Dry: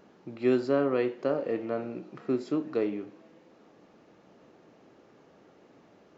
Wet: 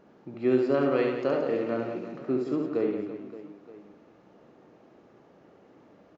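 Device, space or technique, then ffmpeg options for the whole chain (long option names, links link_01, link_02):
behind a face mask: -filter_complex "[0:a]highshelf=frequency=2500:gain=-8,asettb=1/sr,asplit=3[link_01][link_02][link_03];[link_01]atrim=end=0.744[link_04];[link_02]atrim=start=0.74:end=2.12,asetpts=PTS-STARTPTS,afade=type=in:duration=0.004:curve=qsin,afade=type=out:start_time=1.376:duration=0.004:curve=qsin,highshelf=frequency=2300:gain=11.5[link_05];[link_03]atrim=start=2.116[link_06];[link_04][link_05]acrossfade=duration=0.004:curve1=hsin:curve2=qsin[link_07];[link_07][link_06]acrossfade=duration=0.004:curve1=qsin:curve2=hsin,aecho=1:1:70|175|332.5|568.8|923.1:0.631|0.398|0.251|0.158|0.1"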